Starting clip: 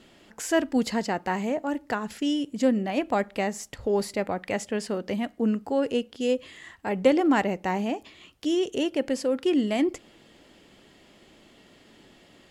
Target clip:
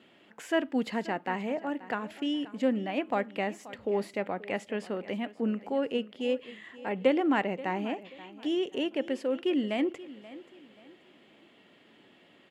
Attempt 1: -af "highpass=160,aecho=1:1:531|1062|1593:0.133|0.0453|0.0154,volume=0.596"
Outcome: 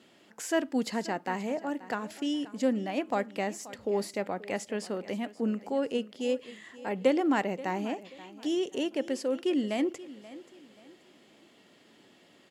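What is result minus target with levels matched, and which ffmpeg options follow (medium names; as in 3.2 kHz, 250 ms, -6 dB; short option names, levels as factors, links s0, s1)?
8 kHz band +11.0 dB
-af "highpass=160,highshelf=f=4000:t=q:w=1.5:g=-9,aecho=1:1:531|1062|1593:0.133|0.0453|0.0154,volume=0.596"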